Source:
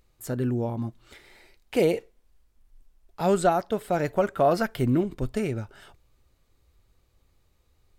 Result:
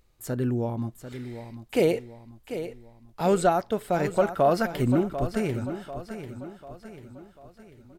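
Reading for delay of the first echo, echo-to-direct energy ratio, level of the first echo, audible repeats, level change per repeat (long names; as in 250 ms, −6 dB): 743 ms, −10.0 dB, −11.0 dB, 4, −6.5 dB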